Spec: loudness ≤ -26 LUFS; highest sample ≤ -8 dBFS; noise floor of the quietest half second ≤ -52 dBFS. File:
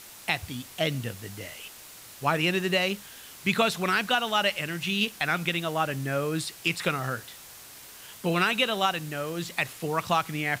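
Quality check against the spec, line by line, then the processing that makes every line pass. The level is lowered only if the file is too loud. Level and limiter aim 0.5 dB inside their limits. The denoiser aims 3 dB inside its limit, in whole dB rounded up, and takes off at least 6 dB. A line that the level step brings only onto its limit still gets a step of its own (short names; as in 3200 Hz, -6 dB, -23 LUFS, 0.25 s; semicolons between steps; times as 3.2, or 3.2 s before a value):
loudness -27.5 LUFS: OK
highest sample -11.0 dBFS: OK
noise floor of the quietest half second -47 dBFS: fail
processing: denoiser 8 dB, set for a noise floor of -47 dBFS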